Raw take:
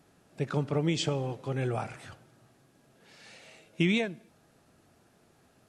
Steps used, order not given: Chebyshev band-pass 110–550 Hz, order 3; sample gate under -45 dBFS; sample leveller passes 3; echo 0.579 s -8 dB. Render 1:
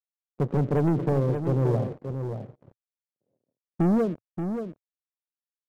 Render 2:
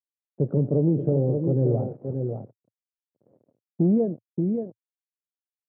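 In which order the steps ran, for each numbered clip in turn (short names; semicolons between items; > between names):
sample gate > Chebyshev band-pass > sample leveller > echo; echo > sample gate > sample leveller > Chebyshev band-pass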